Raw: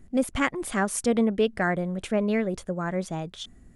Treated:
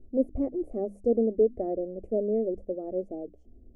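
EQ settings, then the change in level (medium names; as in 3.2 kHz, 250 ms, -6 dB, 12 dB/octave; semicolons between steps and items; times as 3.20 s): inverse Chebyshev low-pass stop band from 1.4 kHz, stop band 40 dB; hum notches 50/100/150/200/250/300 Hz; static phaser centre 400 Hz, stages 4; +2.0 dB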